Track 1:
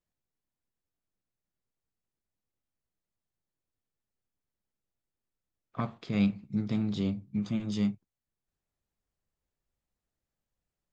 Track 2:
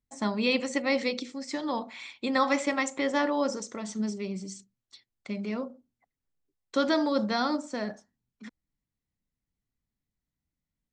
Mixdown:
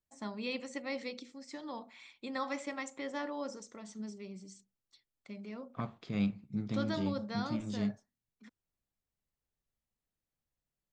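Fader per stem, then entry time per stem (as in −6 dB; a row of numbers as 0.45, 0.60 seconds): −5.5, −12.0 decibels; 0.00, 0.00 seconds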